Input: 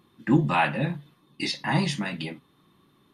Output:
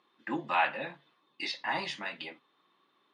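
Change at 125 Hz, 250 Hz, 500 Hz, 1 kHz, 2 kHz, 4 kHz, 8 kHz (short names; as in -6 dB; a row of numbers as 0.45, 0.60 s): -25.0, -16.0, -7.5, -4.0, -4.0, -5.5, -12.5 dB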